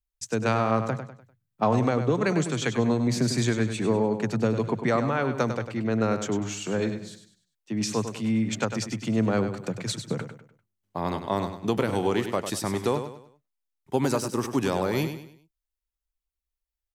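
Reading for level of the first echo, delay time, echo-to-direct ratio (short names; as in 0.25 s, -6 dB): -9.0 dB, 99 ms, -8.5 dB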